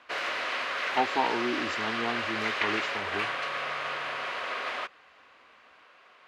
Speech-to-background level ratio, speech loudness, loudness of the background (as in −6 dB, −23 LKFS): −2.5 dB, −33.5 LKFS, −31.0 LKFS